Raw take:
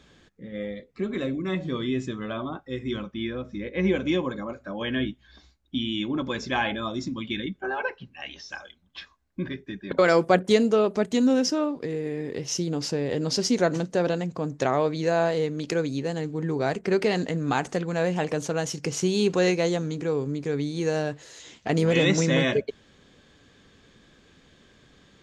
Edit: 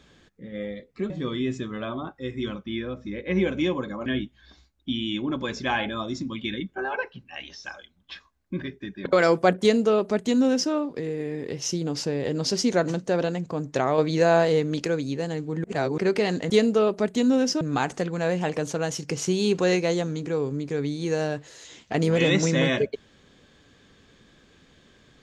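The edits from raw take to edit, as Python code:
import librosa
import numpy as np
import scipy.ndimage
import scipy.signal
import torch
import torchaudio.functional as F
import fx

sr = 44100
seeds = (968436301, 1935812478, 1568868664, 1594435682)

y = fx.edit(x, sr, fx.cut(start_s=1.1, length_s=0.48),
    fx.cut(start_s=4.54, length_s=0.38),
    fx.duplicate(start_s=10.47, length_s=1.11, to_s=17.36),
    fx.clip_gain(start_s=14.84, length_s=0.84, db=4.0),
    fx.reverse_span(start_s=16.5, length_s=0.34), tone=tone)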